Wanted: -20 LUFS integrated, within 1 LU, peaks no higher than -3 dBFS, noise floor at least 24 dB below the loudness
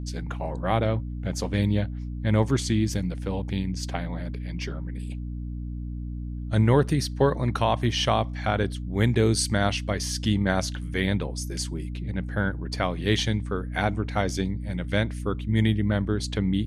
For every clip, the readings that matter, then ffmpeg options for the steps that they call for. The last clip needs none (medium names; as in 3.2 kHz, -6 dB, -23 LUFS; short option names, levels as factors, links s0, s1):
hum 60 Hz; highest harmonic 300 Hz; hum level -30 dBFS; loudness -26.5 LUFS; peak level -8.0 dBFS; loudness target -20.0 LUFS
-> -af "bandreject=f=60:t=h:w=4,bandreject=f=120:t=h:w=4,bandreject=f=180:t=h:w=4,bandreject=f=240:t=h:w=4,bandreject=f=300:t=h:w=4"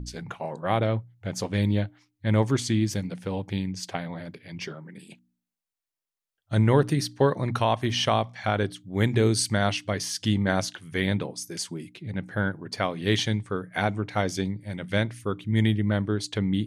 hum not found; loudness -26.5 LUFS; peak level -8.0 dBFS; loudness target -20.0 LUFS
-> -af "volume=2.11,alimiter=limit=0.708:level=0:latency=1"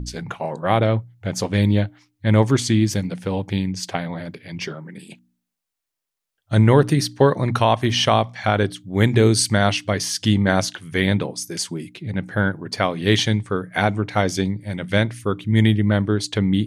loudness -20.5 LUFS; peak level -3.0 dBFS; noise floor -83 dBFS